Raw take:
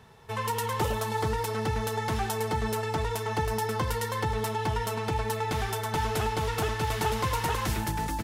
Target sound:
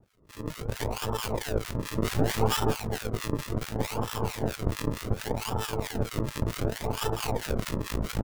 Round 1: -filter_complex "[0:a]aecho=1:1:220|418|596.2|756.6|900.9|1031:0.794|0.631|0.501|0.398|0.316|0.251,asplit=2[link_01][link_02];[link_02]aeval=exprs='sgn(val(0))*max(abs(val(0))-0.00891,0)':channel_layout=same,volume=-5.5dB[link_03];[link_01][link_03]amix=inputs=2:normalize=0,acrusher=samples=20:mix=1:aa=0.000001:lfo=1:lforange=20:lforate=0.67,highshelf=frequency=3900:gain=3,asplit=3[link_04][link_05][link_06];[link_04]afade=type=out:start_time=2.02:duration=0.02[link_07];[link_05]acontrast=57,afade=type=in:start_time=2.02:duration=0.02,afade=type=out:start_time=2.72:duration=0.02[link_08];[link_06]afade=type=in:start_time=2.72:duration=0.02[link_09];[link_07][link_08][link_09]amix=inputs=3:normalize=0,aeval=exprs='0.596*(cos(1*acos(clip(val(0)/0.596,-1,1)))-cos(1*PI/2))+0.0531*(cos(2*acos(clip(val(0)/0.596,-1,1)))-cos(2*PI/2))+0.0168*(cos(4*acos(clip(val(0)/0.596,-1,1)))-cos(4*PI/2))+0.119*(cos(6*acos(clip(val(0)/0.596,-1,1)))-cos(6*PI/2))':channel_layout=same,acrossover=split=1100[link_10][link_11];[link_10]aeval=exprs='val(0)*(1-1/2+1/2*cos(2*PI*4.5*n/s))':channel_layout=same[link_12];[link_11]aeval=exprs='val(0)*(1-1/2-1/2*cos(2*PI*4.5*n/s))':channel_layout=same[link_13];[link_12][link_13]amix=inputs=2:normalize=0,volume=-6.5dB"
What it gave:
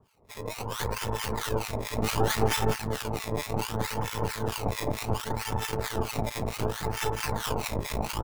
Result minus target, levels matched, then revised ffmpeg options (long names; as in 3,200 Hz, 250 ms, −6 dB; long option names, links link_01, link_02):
sample-and-hold swept by an LFO: distortion −4 dB
-filter_complex "[0:a]aecho=1:1:220|418|596.2|756.6|900.9|1031:0.794|0.631|0.501|0.398|0.316|0.251,asplit=2[link_01][link_02];[link_02]aeval=exprs='sgn(val(0))*max(abs(val(0))-0.00891,0)':channel_layout=same,volume=-5.5dB[link_03];[link_01][link_03]amix=inputs=2:normalize=0,acrusher=samples=40:mix=1:aa=0.000001:lfo=1:lforange=40:lforate=0.67,highshelf=frequency=3900:gain=3,asplit=3[link_04][link_05][link_06];[link_04]afade=type=out:start_time=2.02:duration=0.02[link_07];[link_05]acontrast=57,afade=type=in:start_time=2.02:duration=0.02,afade=type=out:start_time=2.72:duration=0.02[link_08];[link_06]afade=type=in:start_time=2.72:duration=0.02[link_09];[link_07][link_08][link_09]amix=inputs=3:normalize=0,aeval=exprs='0.596*(cos(1*acos(clip(val(0)/0.596,-1,1)))-cos(1*PI/2))+0.0531*(cos(2*acos(clip(val(0)/0.596,-1,1)))-cos(2*PI/2))+0.0168*(cos(4*acos(clip(val(0)/0.596,-1,1)))-cos(4*PI/2))+0.119*(cos(6*acos(clip(val(0)/0.596,-1,1)))-cos(6*PI/2))':channel_layout=same,acrossover=split=1100[link_10][link_11];[link_10]aeval=exprs='val(0)*(1-1/2+1/2*cos(2*PI*4.5*n/s))':channel_layout=same[link_12];[link_11]aeval=exprs='val(0)*(1-1/2-1/2*cos(2*PI*4.5*n/s))':channel_layout=same[link_13];[link_12][link_13]amix=inputs=2:normalize=0,volume=-6.5dB"